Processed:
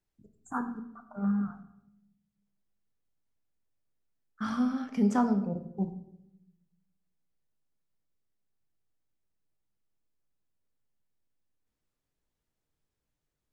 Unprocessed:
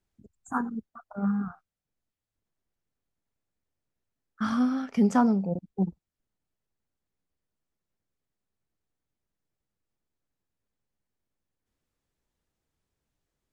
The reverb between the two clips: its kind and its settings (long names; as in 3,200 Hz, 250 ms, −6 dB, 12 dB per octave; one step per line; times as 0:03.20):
rectangular room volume 240 cubic metres, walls mixed, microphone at 0.45 metres
level −4.5 dB